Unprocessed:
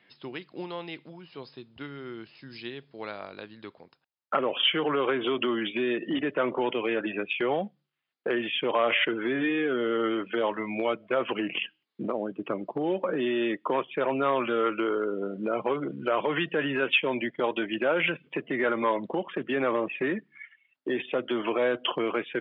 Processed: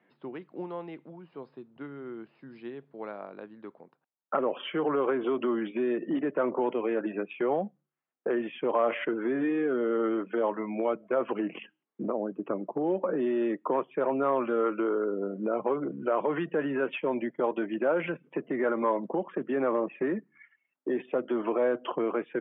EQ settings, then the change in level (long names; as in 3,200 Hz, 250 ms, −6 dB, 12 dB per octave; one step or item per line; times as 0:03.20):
high-pass filter 150 Hz 24 dB per octave
low-pass filter 1,200 Hz 12 dB per octave
0.0 dB